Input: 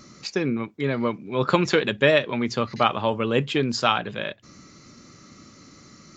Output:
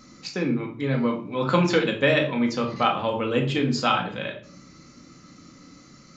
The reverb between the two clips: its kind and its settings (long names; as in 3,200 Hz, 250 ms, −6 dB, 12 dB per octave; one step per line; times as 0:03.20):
rectangular room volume 520 cubic metres, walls furnished, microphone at 2 metres
level −4 dB